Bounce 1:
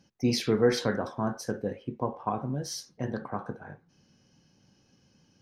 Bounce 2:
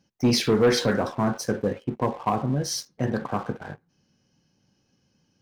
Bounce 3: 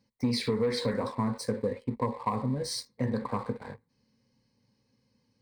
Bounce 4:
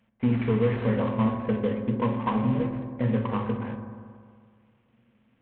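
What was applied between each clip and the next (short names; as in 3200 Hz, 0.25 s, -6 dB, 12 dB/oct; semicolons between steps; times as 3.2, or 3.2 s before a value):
sample leveller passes 2
ripple EQ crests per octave 0.96, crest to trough 12 dB; compressor 6:1, threshold -20 dBFS, peak gain reduction 10.5 dB; gain -5 dB
CVSD 16 kbps; on a send at -3.5 dB: tilt shelf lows +4.5 dB, about 760 Hz + reverb RT60 2.0 s, pre-delay 4 ms; on the sum: gain +2 dB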